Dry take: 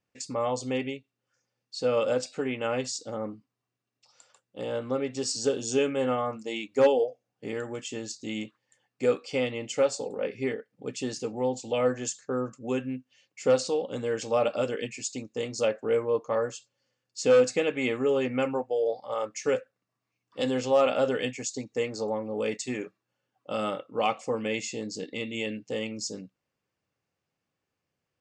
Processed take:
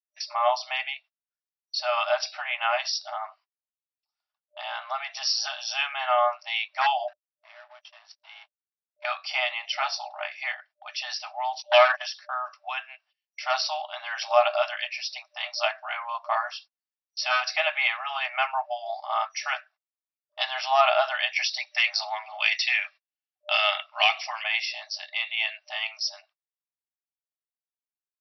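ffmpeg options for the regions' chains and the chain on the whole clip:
-filter_complex "[0:a]asettb=1/sr,asplit=3[a][b][c];[a]atrim=end=7.084[d];[b]atrim=start=7.08:end=9.05,asetpts=PTS-STARTPTS,afade=t=in:d=0.004:c=qsin,afade=t=out:st=1.966:d=0.004:c=qsin,afreqshift=24,acompressor=threshold=-44dB:ratio=6:attack=3.2:release=140:knee=1:detection=peak,aeval=exprs='sgn(val(0))*max(abs(val(0))-0.00188,0)':c=same[e];[c]atrim=start=9.046[f];[d][e]acrossfade=d=0.004:c1=hsin:c2=qsin[g];[g][f]acrossfade=d=0.004:c1=qsin:c2=hsin,asettb=1/sr,asplit=3[h][i][j];[h]atrim=end=11.624[k];[i]atrim=start=11.62:end=12.02,asetpts=PTS-STARTPTS,afade=t=in:d=0.004:c=qsin,afade=t=out:st=0.396:d=0.004:c=qsin,agate=range=-31dB:threshold=-35dB:ratio=16:release=100:detection=peak,bandreject=f=50:t=h:w=6,bandreject=f=100:t=h:w=6,bandreject=f=150:t=h:w=6,bandreject=f=200:t=h:w=6,bandreject=f=250:t=h:w=6,bandreject=f=300:t=h:w=6,bandreject=f=350:t=h:w=6,bandreject=f=400:t=h:w=6,asplit=2[l][m];[m]highpass=f=720:p=1,volume=17dB,asoftclip=type=tanh:threshold=-14dB[n];[l][n]amix=inputs=2:normalize=0,lowpass=f=6.2k:p=1,volume=-6dB[o];[j]atrim=start=12.016[p];[k][o]acrossfade=d=0.004:c1=hsin:c2=qsin[q];[q][p]acrossfade=d=0.004:c1=qsin:c2=hsin,asettb=1/sr,asplit=3[r][s][t];[r]atrim=end=21.364[u];[s]atrim=start=21.36:end=24.44,asetpts=PTS-STARTPTS,afade=t=in:d=0.004:c=qsin,afade=t=out:st=3.076:d=0.004:c=qsin,highshelf=f=1.6k:t=q:w=1.5:g=9,acrossover=split=760|4200[v][w][x];[v]acompressor=threshold=-32dB:ratio=4[y];[w]acompressor=threshold=-29dB:ratio=4[z];[x]acompressor=threshold=-35dB:ratio=4[aa];[y][z][aa]amix=inputs=3:normalize=0,asoftclip=type=hard:threshold=-20dB[ab];[t]atrim=start=24.436[ac];[u][ab]acrossfade=d=0.004:c1=hsin:c2=qsin[ad];[ad][ac]acrossfade=d=0.004:c1=qsin:c2=hsin,agate=range=-35dB:threshold=-49dB:ratio=16:detection=peak,afftfilt=real='re*between(b*sr/4096,600,5800)':imag='im*between(b*sr/4096,600,5800)':win_size=4096:overlap=0.75,acontrast=30,volume=4dB"

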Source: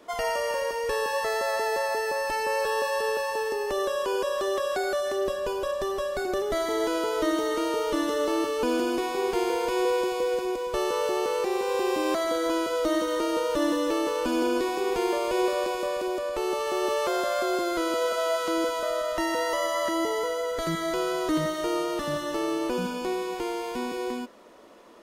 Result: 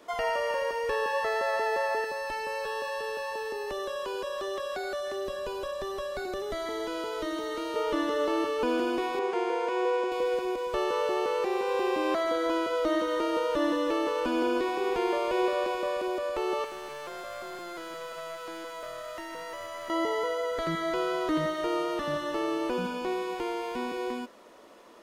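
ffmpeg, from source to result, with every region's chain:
-filter_complex "[0:a]asettb=1/sr,asplit=3[a][b][c];[a]atrim=end=2.044[d];[b]atrim=start=2.04:end=7.76,asetpts=PTS-STARTPTS,afade=t=in:d=0.004:c=qsin,afade=t=out:st=5.716:d=0.004:c=qsin,acrossover=split=210|3000[e][f][g];[f]acompressor=threshold=-32dB:ratio=2.5:attack=3.2:release=140:knee=2.83:detection=peak[h];[e][h][g]amix=inputs=3:normalize=0,aeval=exprs='val(0)+0.00251*sin(2*PI*4000*n/s)':c=same[i];[c]atrim=start=7.756[j];[d][i]acrossfade=d=0.004:c1=hsin:c2=qsin[k];[k][j]acrossfade=d=0.004:c1=qsin:c2=hsin,asettb=1/sr,asplit=3[l][m][n];[l]atrim=end=9.194[o];[m]atrim=start=9.19:end=10.12,asetpts=PTS-STARTPTS,afade=t=in:d=0.004:c=qsin,afade=t=out:st=0.926:d=0.004:c=qsin,highpass=310,lowpass=5.5k,equalizer=f=4.2k:w=1.1:g=-7[p];[n]atrim=start=10.116[q];[o][p]acrossfade=d=0.004:c1=hsin:c2=qsin[r];[r][q]acrossfade=d=0.004:c1=qsin:c2=hsin,asettb=1/sr,asplit=3[s][t][u];[s]atrim=end=16.644[v];[t]atrim=start=16.64:end=19.9,asetpts=PTS-STARTPTS,afade=t=in:d=0.004:c=qsin,afade=t=out:st=3.256:d=0.004:c=qsin,aeval=exprs='clip(val(0),-1,0.0355)':c=same,acrossover=split=980|6000[w][x][y];[w]acompressor=threshold=-40dB:ratio=4[z];[x]acompressor=threshold=-43dB:ratio=4[aa];[y]acompressor=threshold=-50dB:ratio=4[ab];[z][aa][ab]amix=inputs=3:normalize=0[ac];[u]atrim=start=19.896[ad];[v][ac]acrossfade=d=0.004:c1=hsin:c2=qsin[ae];[ae][ad]acrossfade=d=0.004:c1=qsin:c2=hsin,acrossover=split=3800[af][ag];[ag]acompressor=threshold=-52dB:ratio=4:attack=1:release=60[ah];[af][ah]amix=inputs=2:normalize=0,lowshelf=f=410:g=-4"

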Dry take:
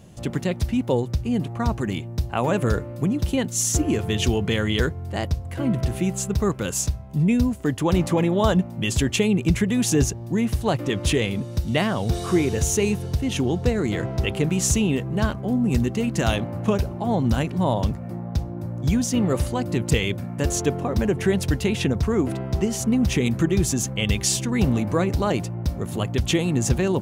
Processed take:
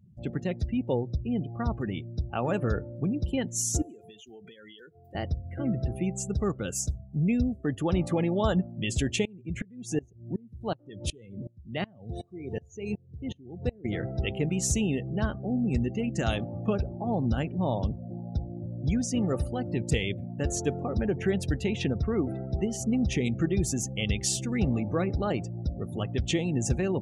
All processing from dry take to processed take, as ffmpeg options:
-filter_complex "[0:a]asettb=1/sr,asplit=3[a][b][c];[a]atrim=end=3.824[d];[b]atrim=start=3.82:end=5.15,asetpts=PTS-STARTPTS,afade=t=in:d=0.004:c=qsin,afade=t=out:st=1.326:d=0.004:c=qsin,highpass=f=180:p=1,aemphasis=mode=production:type=bsi,acompressor=threshold=-36dB:ratio=10:attack=3.2:release=140:knee=1:detection=peak[e];[c]atrim=start=5.146[f];[d][e]acrossfade=d=0.004:c1=hsin:c2=qsin[g];[g][f]acrossfade=d=0.004:c1=qsin:c2=hsin,asettb=1/sr,asplit=3[h][i][j];[h]atrim=end=9.254[k];[i]atrim=start=9.25:end=13.85,asetpts=PTS-STARTPTS,afade=t=in:d=0.004:c=qsin,afade=t=out:st=4.596:d=0.004:c=qsin,highpass=f=62:w=0.5412,highpass=f=62:w=1.3066,acompressor=mode=upward:threshold=-21dB:ratio=2.5:attack=3.2:release=140:knee=2.83:detection=peak,aeval=exprs='val(0)*pow(10,-28*if(lt(mod(-2.7*n/s,1),2*abs(-2.7)/1000),1-mod(-2.7*n/s,1)/(2*abs(-2.7)/1000),(mod(-2.7*n/s,1)-2*abs(-2.7)/1000)/(1-2*abs(-2.7)/1000))/20)':c=same[l];[j]atrim=start=13.846[m];[k][l]acrossfade=d=0.004:c1=hsin:c2=qsin[n];[n][m]acrossfade=d=0.004:c1=qsin:c2=hsin,bandreject=f=1k:w=7.3,afftdn=nr=33:nf=-36,volume=-6dB"

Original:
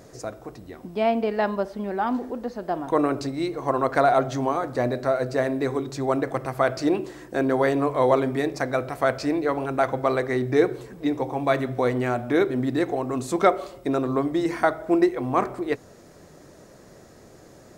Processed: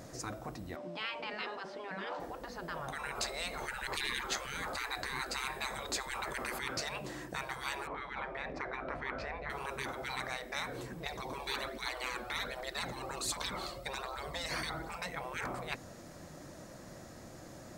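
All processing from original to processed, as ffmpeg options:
-filter_complex "[0:a]asettb=1/sr,asplit=3[a][b][c];[a]atrim=end=0.764[d];[b]atrim=start=0.76:end=2.2,asetpts=PTS-STARTPTS,afade=t=in:d=0.004:c=qsin,afade=t=out:st=1.436:d=0.004:c=qsin,highpass=240,lowpass=5.3k,aeval=exprs='val(0)+0.00708*sin(2*PI*590*n/s)':c=same[e];[c]atrim=start=2.196[f];[d][e]acrossfade=d=0.004:c1=hsin:c2=qsin[g];[g][f]acrossfade=d=0.004:c1=qsin:c2=hsin,asettb=1/sr,asplit=3[h][i][j];[h]atrim=end=3.154[k];[i]atrim=start=3.15:end=6.59,asetpts=PTS-STARTPTS,afade=t=in:d=0.004:c=qsin,afade=t=out:st=3.436:d=0.004:c=qsin,bandreject=f=5.7k:w=8.5,acontrast=33[l];[j]atrim=start=6.586[m];[k][l]acrossfade=d=0.004:c1=hsin:c2=qsin[n];[n][m]acrossfade=d=0.004:c1=qsin:c2=hsin,asettb=1/sr,asplit=3[o][p][q];[o]atrim=end=7.874[r];[p]atrim=start=7.87:end=9.5,asetpts=PTS-STARTPTS,afade=t=in:d=0.004:c=qsin,afade=t=out:st=1.626:d=0.004:c=qsin,lowpass=2k,asubboost=boost=3:cutoff=230[s];[q]atrim=start=9.496[t];[r][s]acrossfade=d=0.004:c1=hsin:c2=qsin[u];[u][t]acrossfade=d=0.004:c1=qsin:c2=hsin,asettb=1/sr,asplit=3[v][w][x];[v]atrim=end=11.064[y];[w]atrim=start=11.06:end=14.95,asetpts=PTS-STARTPTS,afade=t=in:d=0.004:c=qsin,afade=t=out:st=3.886:d=0.004:c=qsin,equalizer=f=4.3k:w=5.7:g=9,aphaser=in_gain=1:out_gain=1:delay=1.9:decay=0.48:speed=1.3:type=triangular[z];[x]atrim=start=14.946[aa];[y][z]acrossfade=d=0.004:c1=hsin:c2=qsin[ab];[ab][aa]acrossfade=d=0.004:c1=qsin:c2=hsin,equalizer=f=420:t=o:w=0.28:g=-11.5,afftfilt=real='re*lt(hypot(re,im),0.0794)':imag='im*lt(hypot(re,im),0.0794)':win_size=1024:overlap=0.75"

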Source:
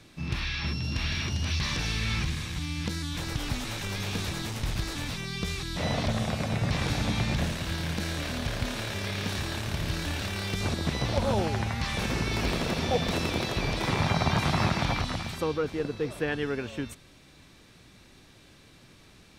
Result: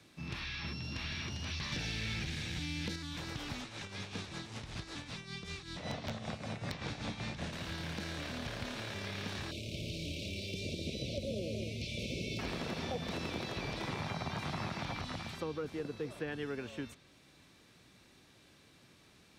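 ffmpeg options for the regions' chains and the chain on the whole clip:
-filter_complex "[0:a]asettb=1/sr,asplit=3[a][b][c];[a]atrim=end=1.724[d];[b]atrim=start=1.72:end=2.96,asetpts=PTS-STARTPTS,afade=t=in:d=0.004:c=qsin,afade=t=out:st=1.236:d=0.004:c=qsin,equalizer=f=1.1k:w=4:g=-14,acontrast=59,volume=18dB,asoftclip=hard,volume=-18dB[e];[c]atrim=start=2.956[f];[d][e]acrossfade=d=0.004:c1=hsin:c2=qsin[g];[g][f]acrossfade=d=0.004:c1=qsin:c2=hsin,asettb=1/sr,asplit=3[h][i][j];[h]atrim=end=3.614[k];[i]atrim=start=3.61:end=7.53,asetpts=PTS-STARTPTS,afade=t=in:d=0.004:c=qsin,afade=t=out:st=3.916:d=0.004:c=qsin,lowpass=f=10k:w=0.5412,lowpass=f=10k:w=1.3066,tremolo=f=5.2:d=0.65,aeval=exprs='(mod(8.41*val(0)+1,2)-1)/8.41':c=same[l];[j]atrim=start=7.526[m];[k][l]acrossfade=d=0.004:c1=hsin:c2=qsin[n];[n][m]acrossfade=d=0.004:c1=qsin:c2=hsin,asettb=1/sr,asplit=3[o][p][q];[o]atrim=end=9.514[r];[p]atrim=start=9.51:end=12.39,asetpts=PTS-STARTPTS,afade=t=in:d=0.004:c=qsin,afade=t=out:st=2.876:d=0.004:c=qsin,asuperstop=centerf=1200:order=20:qfactor=0.75,aecho=1:1:207:0.501,atrim=end_sample=127008[s];[q]atrim=start=12.386[t];[r][s]acrossfade=d=0.004:c1=hsin:c2=qsin[u];[u][t]acrossfade=d=0.004:c1=qsin:c2=hsin,highpass=f=110:p=1,acrossover=split=320|6500[v][w][x];[v]acompressor=threshold=-32dB:ratio=4[y];[w]acompressor=threshold=-32dB:ratio=4[z];[x]acompressor=threshold=-58dB:ratio=4[aa];[y][z][aa]amix=inputs=3:normalize=0,volume=-6.5dB"

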